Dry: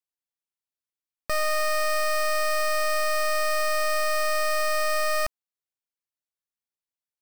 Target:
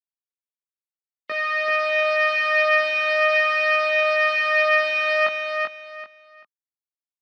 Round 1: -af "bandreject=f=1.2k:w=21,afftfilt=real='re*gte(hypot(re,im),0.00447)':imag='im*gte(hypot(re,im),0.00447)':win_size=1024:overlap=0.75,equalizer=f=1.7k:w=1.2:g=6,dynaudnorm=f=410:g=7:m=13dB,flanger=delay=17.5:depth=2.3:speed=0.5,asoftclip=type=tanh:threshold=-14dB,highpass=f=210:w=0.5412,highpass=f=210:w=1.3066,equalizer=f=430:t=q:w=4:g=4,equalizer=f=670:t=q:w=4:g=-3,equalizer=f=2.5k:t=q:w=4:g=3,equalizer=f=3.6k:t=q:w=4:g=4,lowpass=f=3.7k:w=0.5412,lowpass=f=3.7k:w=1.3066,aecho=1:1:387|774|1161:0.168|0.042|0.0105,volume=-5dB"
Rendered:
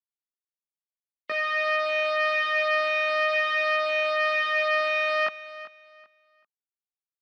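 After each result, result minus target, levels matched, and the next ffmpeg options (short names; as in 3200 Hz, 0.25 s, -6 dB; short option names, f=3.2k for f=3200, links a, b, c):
soft clip: distortion +12 dB; echo-to-direct -11 dB
-af "bandreject=f=1.2k:w=21,afftfilt=real='re*gte(hypot(re,im),0.00447)':imag='im*gte(hypot(re,im),0.00447)':win_size=1024:overlap=0.75,equalizer=f=1.7k:w=1.2:g=6,dynaudnorm=f=410:g=7:m=13dB,flanger=delay=17.5:depth=2.3:speed=0.5,asoftclip=type=tanh:threshold=-4.5dB,highpass=f=210:w=0.5412,highpass=f=210:w=1.3066,equalizer=f=430:t=q:w=4:g=4,equalizer=f=670:t=q:w=4:g=-3,equalizer=f=2.5k:t=q:w=4:g=3,equalizer=f=3.6k:t=q:w=4:g=4,lowpass=f=3.7k:w=0.5412,lowpass=f=3.7k:w=1.3066,aecho=1:1:387|774|1161:0.168|0.042|0.0105,volume=-5dB"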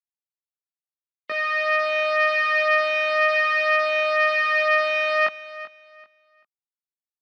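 echo-to-direct -11 dB
-af "bandreject=f=1.2k:w=21,afftfilt=real='re*gte(hypot(re,im),0.00447)':imag='im*gte(hypot(re,im),0.00447)':win_size=1024:overlap=0.75,equalizer=f=1.7k:w=1.2:g=6,dynaudnorm=f=410:g=7:m=13dB,flanger=delay=17.5:depth=2.3:speed=0.5,asoftclip=type=tanh:threshold=-4.5dB,highpass=f=210:w=0.5412,highpass=f=210:w=1.3066,equalizer=f=430:t=q:w=4:g=4,equalizer=f=670:t=q:w=4:g=-3,equalizer=f=2.5k:t=q:w=4:g=3,equalizer=f=3.6k:t=q:w=4:g=4,lowpass=f=3.7k:w=0.5412,lowpass=f=3.7k:w=1.3066,aecho=1:1:387|774|1161:0.596|0.149|0.0372,volume=-5dB"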